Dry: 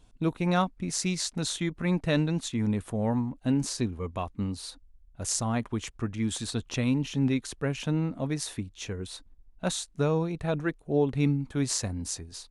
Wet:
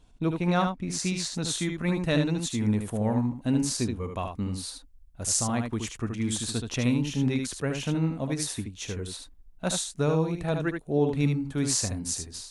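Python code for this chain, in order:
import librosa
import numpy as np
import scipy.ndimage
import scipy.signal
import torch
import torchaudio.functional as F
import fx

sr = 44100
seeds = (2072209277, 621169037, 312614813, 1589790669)

y = fx.high_shelf(x, sr, hz=7200.0, db=fx.steps((0.0, -4.0), (1.48, 6.5)))
y = y + 10.0 ** (-5.5 / 20.0) * np.pad(y, (int(75 * sr / 1000.0), 0))[:len(y)]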